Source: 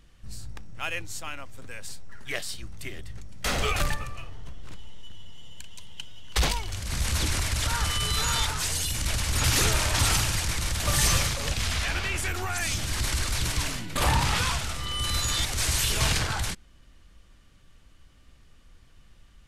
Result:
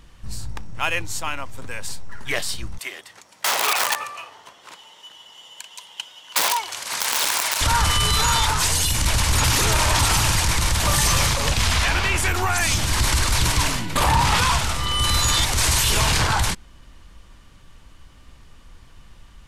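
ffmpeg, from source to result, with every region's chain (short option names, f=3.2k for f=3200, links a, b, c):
-filter_complex "[0:a]asettb=1/sr,asplit=3[a][b][c];[a]atrim=end=2.784[d];[b]atrim=start=2.78:end=7.61,asetpts=PTS-STARTPTS,afade=t=in:d=0.004:c=qsin,afade=t=out:st=4.826:d=0.004:c=qsin,aeval=exprs='(mod(8.91*val(0)+1,2)-1)/8.91':c=same,highpass=600[e];[c]atrim=start=7.606[f];[d][e]acrossfade=d=0.004:c1=hsin:c2=qsin[g];[g][f]acrossfade=d=0.004:c1=qsin:c2=hsin,equalizer=f=960:t=o:w=0.45:g=7,alimiter=limit=-17.5dB:level=0:latency=1:release=11,volume=8dB"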